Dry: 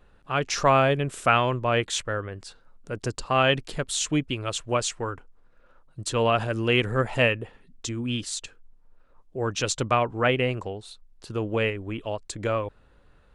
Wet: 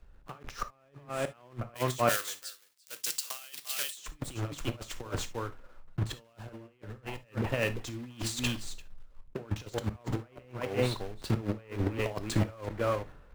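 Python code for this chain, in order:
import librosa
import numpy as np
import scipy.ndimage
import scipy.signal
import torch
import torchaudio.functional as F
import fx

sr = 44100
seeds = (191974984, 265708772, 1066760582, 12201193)

y = fx.block_float(x, sr, bits=3)
y = fx.differentiator(y, sr, at=(1.74, 3.97))
y = y + 10.0 ** (-14.0 / 20.0) * np.pad(y, (int(345 * sr / 1000.0), 0))[:len(y)]
y = fx.over_compress(y, sr, threshold_db=-35.0, ratio=-0.5)
y = fx.high_shelf(y, sr, hz=3800.0, db=-9.5)
y = fx.rev_gated(y, sr, seeds[0], gate_ms=90, shape='flat', drr_db=11.0)
y = fx.band_widen(y, sr, depth_pct=70)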